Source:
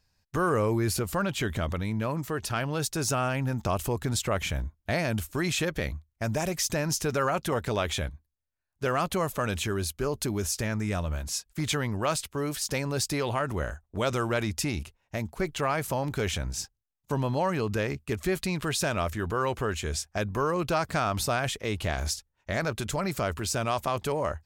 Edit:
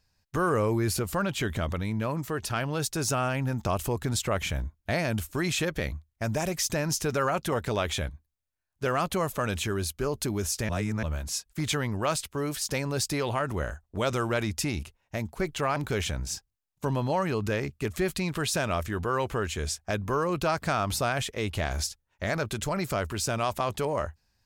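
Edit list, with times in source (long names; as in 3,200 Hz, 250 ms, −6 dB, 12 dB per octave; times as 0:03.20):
0:10.69–0:11.03: reverse
0:15.76–0:16.03: remove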